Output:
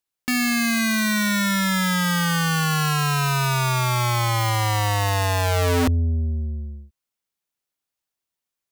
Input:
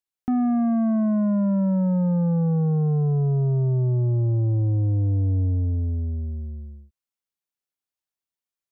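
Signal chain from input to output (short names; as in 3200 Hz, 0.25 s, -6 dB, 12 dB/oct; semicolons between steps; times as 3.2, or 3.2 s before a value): wrapped overs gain 22.5 dB; gain +5.5 dB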